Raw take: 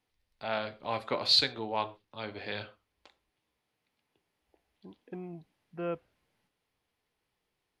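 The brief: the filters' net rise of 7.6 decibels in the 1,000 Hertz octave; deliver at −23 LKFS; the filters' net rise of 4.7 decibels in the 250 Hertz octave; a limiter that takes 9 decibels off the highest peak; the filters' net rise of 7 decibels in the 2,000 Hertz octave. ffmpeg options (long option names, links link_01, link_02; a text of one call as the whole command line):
ffmpeg -i in.wav -af "equalizer=frequency=250:width_type=o:gain=6,equalizer=frequency=1000:width_type=o:gain=7.5,equalizer=frequency=2000:width_type=o:gain=6.5,volume=9.5dB,alimiter=limit=-8.5dB:level=0:latency=1" out.wav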